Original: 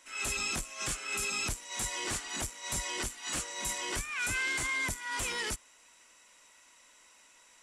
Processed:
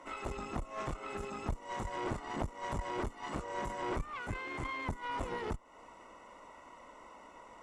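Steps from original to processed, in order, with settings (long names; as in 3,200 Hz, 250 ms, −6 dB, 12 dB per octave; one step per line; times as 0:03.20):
downward compressor 8 to 1, threshold −45 dBFS, peak gain reduction 15 dB
Savitzky-Golay smoothing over 65 samples
harmonic generator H 4 −13 dB, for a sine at −39.5 dBFS
level +16 dB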